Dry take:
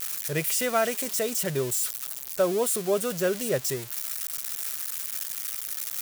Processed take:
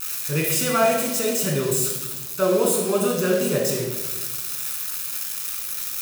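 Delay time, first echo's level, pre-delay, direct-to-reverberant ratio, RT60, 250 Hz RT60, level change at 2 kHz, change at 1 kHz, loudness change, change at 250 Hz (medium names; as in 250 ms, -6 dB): no echo, no echo, 20 ms, -0.5 dB, 1.2 s, 1.6 s, +4.5 dB, +6.0 dB, +5.0 dB, +8.0 dB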